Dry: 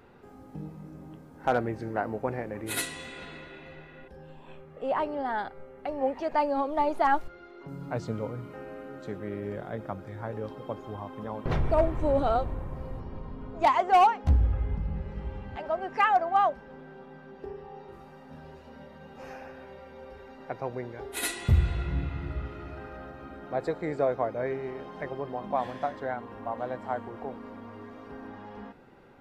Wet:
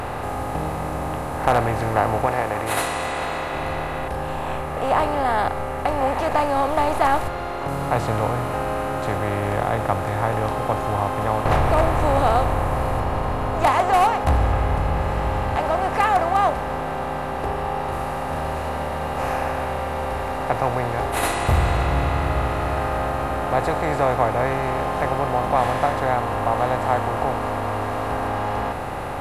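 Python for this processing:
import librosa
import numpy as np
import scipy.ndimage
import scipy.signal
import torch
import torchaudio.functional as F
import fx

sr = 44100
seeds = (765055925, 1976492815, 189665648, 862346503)

y = fx.bin_compress(x, sr, power=0.4)
y = fx.low_shelf(y, sr, hz=210.0, db=-8.5, at=(2.26, 3.53))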